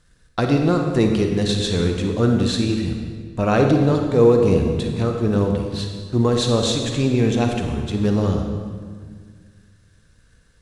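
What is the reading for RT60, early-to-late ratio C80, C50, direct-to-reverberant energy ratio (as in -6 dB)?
1.8 s, 5.0 dB, 3.5 dB, 3.0 dB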